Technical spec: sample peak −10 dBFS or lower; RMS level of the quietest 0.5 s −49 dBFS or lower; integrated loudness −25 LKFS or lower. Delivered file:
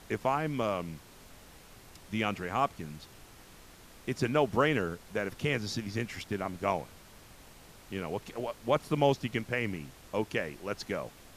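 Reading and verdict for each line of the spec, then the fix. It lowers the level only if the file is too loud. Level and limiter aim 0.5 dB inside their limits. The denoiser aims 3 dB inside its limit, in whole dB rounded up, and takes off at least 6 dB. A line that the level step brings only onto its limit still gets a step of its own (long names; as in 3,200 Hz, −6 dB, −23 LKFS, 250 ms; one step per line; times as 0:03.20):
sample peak −12.0 dBFS: in spec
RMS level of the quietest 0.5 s −53 dBFS: in spec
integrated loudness −32.5 LKFS: in spec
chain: no processing needed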